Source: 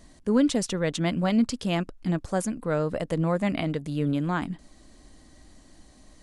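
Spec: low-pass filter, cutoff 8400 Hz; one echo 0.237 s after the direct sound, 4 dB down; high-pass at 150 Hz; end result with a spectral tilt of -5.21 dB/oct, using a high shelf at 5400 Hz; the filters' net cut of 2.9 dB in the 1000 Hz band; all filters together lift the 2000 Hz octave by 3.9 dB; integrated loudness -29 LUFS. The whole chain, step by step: HPF 150 Hz; LPF 8400 Hz; bell 1000 Hz -6 dB; bell 2000 Hz +6 dB; high shelf 5400 Hz +4 dB; echo 0.237 s -4 dB; gain -3 dB

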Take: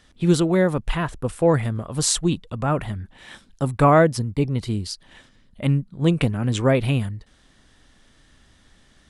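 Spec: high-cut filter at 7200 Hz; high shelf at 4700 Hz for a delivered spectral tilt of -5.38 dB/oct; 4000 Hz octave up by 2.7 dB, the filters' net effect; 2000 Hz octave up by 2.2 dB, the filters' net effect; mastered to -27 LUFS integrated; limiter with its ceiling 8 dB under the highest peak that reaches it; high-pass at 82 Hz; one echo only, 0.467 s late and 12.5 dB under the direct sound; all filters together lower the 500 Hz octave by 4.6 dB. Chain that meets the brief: HPF 82 Hz; LPF 7200 Hz; bell 500 Hz -6 dB; bell 2000 Hz +3 dB; bell 4000 Hz +7 dB; high shelf 4700 Hz -8 dB; limiter -14 dBFS; echo 0.467 s -12.5 dB; gain -1.5 dB

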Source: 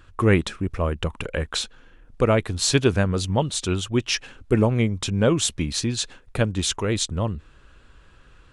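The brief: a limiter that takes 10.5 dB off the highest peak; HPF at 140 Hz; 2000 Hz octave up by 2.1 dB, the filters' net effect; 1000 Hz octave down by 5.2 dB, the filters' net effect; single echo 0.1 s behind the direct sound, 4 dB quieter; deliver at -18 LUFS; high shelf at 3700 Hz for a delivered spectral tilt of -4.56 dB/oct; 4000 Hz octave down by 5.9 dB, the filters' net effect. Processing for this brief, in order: HPF 140 Hz; bell 1000 Hz -9 dB; bell 2000 Hz +8.5 dB; high shelf 3700 Hz -4 dB; bell 4000 Hz -7 dB; limiter -13 dBFS; echo 0.1 s -4 dB; gain +8.5 dB

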